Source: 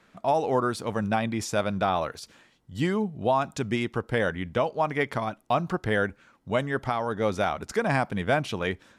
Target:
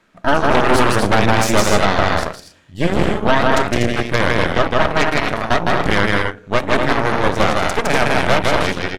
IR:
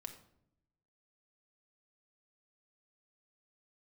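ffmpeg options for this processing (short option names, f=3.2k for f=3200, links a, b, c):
-filter_complex "[0:a]aecho=1:1:160.3|242|274.1:0.794|0.562|0.282,asplit=2[a][b];[1:a]atrim=start_sample=2205,asetrate=61740,aresample=44100[c];[b][c]afir=irnorm=-1:irlink=0,volume=9dB[d];[a][d]amix=inputs=2:normalize=0,aeval=exprs='0.75*(cos(1*acos(clip(val(0)/0.75,-1,1)))-cos(1*PI/2))+0.266*(cos(6*acos(clip(val(0)/0.75,-1,1)))-cos(6*PI/2))+0.0266*(cos(7*acos(clip(val(0)/0.75,-1,1)))-cos(7*PI/2))':c=same,asettb=1/sr,asplit=3[e][f][g];[e]atrim=end=0.694[h];[f]atrim=start=0.69:end=1.81,asetpts=PTS-STARTPTS,afade=t=in:d=0.004:c=qsin,afade=t=out:st=1.116:d=0.004:c=qsin,acontrast=48[i];[g]atrim=start=1.806[j];[h][i]acrossfade=d=0.004:c1=hsin:c2=qsin[k];[k][j]acrossfade=d=0.004:c1=qsin:c2=hsin,volume=-2dB"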